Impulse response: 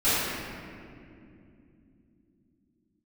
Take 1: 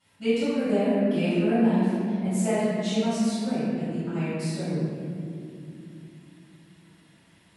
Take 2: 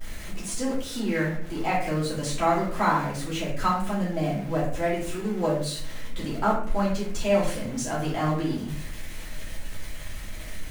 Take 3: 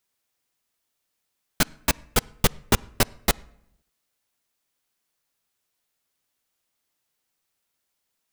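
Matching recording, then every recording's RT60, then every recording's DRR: 1; 2.7 s, 0.60 s, 0.80 s; -16.0 dB, -7.5 dB, 20.5 dB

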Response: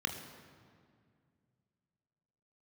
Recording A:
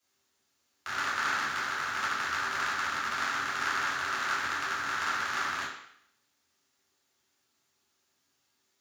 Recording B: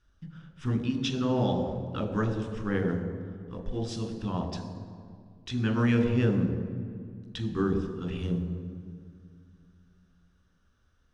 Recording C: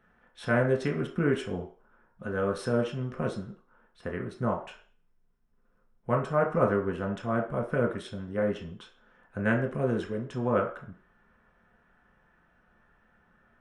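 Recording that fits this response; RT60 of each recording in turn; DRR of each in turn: B; 0.65 s, 2.1 s, 0.40 s; -10.0 dB, 4.5 dB, 0.5 dB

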